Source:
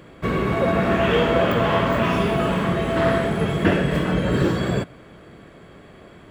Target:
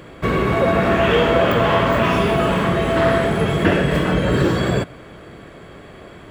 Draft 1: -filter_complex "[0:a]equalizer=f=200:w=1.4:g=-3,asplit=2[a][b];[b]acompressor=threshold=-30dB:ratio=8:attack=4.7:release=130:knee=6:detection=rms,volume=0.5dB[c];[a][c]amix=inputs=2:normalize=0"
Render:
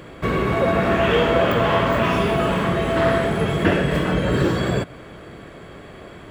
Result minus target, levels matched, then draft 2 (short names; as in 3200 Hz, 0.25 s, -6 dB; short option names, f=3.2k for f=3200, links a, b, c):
compressor: peak gain reduction +8.5 dB
-filter_complex "[0:a]equalizer=f=200:w=1.4:g=-3,asplit=2[a][b];[b]acompressor=threshold=-20.5dB:ratio=8:attack=4.7:release=130:knee=6:detection=rms,volume=0.5dB[c];[a][c]amix=inputs=2:normalize=0"